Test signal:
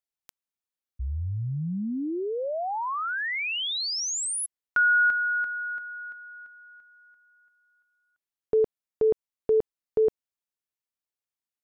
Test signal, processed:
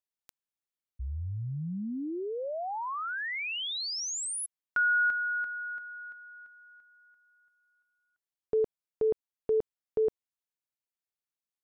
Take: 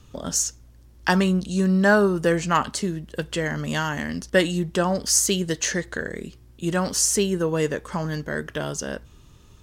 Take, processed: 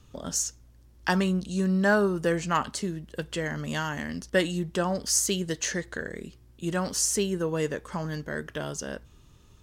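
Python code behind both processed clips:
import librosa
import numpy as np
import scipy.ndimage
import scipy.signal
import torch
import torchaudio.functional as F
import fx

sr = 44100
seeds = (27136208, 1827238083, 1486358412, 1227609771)

y = np.clip(x, -10.0 ** (-5.5 / 20.0), 10.0 ** (-5.5 / 20.0))
y = y * librosa.db_to_amplitude(-5.0)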